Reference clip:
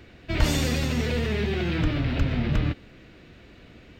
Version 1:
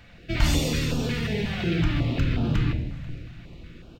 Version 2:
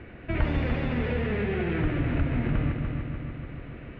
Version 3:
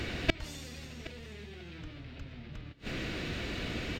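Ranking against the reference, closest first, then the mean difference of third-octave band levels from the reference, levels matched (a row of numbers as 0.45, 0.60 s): 1, 2, 3; 3.0, 7.5, 13.5 dB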